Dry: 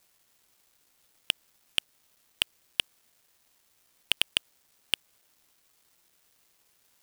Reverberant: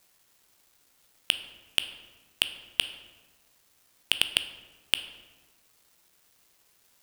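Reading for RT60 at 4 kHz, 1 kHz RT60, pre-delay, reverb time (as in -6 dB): 0.80 s, 1.3 s, 11 ms, 1.4 s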